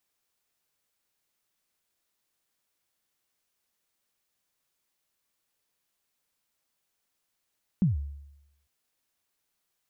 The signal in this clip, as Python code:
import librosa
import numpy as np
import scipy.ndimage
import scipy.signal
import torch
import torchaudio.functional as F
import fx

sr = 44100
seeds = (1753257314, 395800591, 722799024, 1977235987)

y = fx.drum_kick(sr, seeds[0], length_s=0.85, level_db=-17.5, start_hz=210.0, end_hz=71.0, sweep_ms=145.0, decay_s=0.89, click=False)